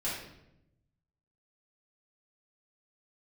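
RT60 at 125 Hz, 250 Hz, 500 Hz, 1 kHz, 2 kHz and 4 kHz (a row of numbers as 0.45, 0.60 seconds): 1.5, 1.2, 0.95, 0.75, 0.70, 0.60 seconds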